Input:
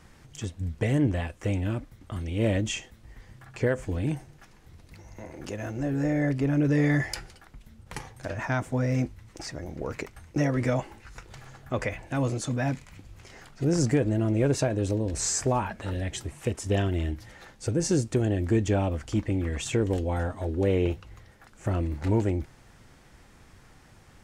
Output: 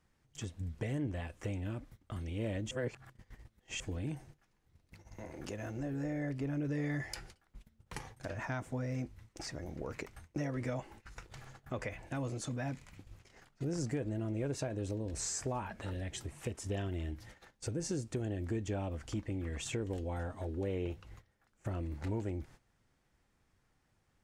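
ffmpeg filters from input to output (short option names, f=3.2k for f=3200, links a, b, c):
-filter_complex "[0:a]asplit=3[a][b][c];[a]atrim=end=2.712[d];[b]atrim=start=2.708:end=3.802,asetpts=PTS-STARTPTS,areverse[e];[c]atrim=start=3.798[f];[d][e]acrossfade=d=0.004:c1=hsin:c2=hsin[g];[g][f]acrossfade=d=0.004:c1=hsin:c2=hsin,agate=range=-16dB:threshold=-46dB:ratio=16:detection=peak,acompressor=threshold=-35dB:ratio=2,volume=-4.5dB"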